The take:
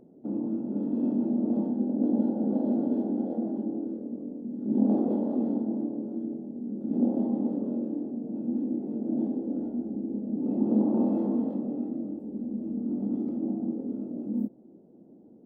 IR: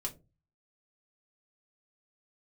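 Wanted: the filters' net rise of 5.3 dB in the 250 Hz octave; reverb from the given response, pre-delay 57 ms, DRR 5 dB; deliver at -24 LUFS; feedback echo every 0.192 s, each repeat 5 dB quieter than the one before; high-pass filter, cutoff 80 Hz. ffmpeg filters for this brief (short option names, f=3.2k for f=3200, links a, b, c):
-filter_complex "[0:a]highpass=80,equalizer=f=250:t=o:g=6,aecho=1:1:192|384|576|768|960|1152|1344:0.562|0.315|0.176|0.0988|0.0553|0.031|0.0173,asplit=2[a][b];[1:a]atrim=start_sample=2205,adelay=57[c];[b][c]afir=irnorm=-1:irlink=0,volume=-5dB[d];[a][d]amix=inputs=2:normalize=0,volume=-3dB"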